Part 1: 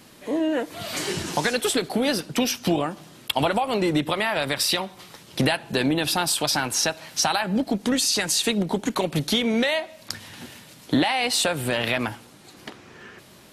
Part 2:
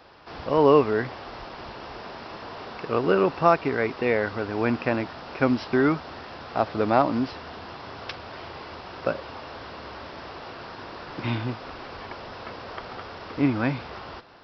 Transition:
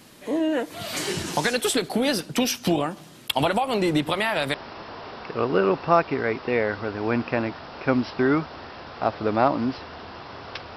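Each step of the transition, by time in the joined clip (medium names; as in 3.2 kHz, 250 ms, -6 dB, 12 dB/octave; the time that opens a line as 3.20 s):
part 1
3.76 s: add part 2 from 1.30 s 0.78 s -8 dB
4.54 s: go over to part 2 from 2.08 s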